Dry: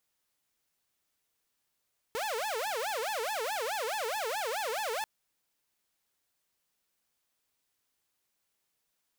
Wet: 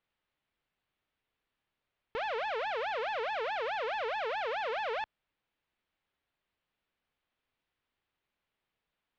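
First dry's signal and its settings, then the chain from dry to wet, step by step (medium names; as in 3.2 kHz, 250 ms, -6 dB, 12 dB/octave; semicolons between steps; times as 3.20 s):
siren wail 434–880 Hz 4.7 per s saw -29 dBFS 2.89 s
low-pass 3.4 kHz 24 dB/octave; bass shelf 84 Hz +7 dB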